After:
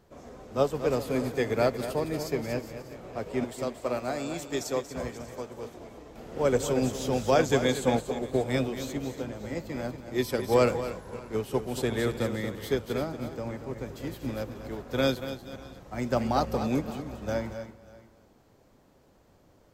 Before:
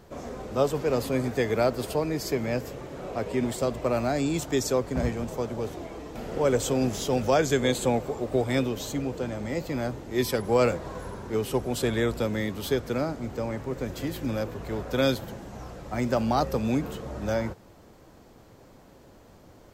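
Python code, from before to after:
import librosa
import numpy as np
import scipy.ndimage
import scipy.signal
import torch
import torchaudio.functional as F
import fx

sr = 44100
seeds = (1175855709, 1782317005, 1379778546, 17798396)

y = fx.reverse_delay(x, sr, ms=273, wet_db=-12.5)
y = fx.low_shelf(y, sr, hz=270.0, db=-8.5, at=(3.44, 5.74))
y = fx.echo_multitap(y, sr, ms=(234, 592), db=(-8.0, -16.5))
y = fx.upward_expand(y, sr, threshold_db=-37.0, expansion=1.5)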